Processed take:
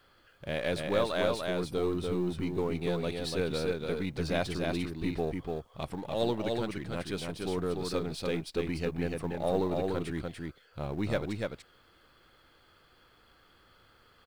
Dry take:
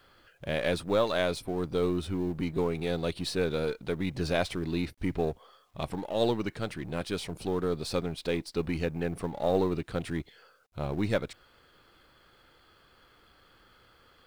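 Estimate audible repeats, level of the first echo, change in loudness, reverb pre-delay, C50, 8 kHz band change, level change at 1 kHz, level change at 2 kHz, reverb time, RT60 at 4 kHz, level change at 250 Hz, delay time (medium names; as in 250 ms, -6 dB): 1, -3.5 dB, -1.5 dB, no reverb, no reverb, -1.5 dB, -1.5 dB, -1.5 dB, no reverb, no reverb, -1.5 dB, 292 ms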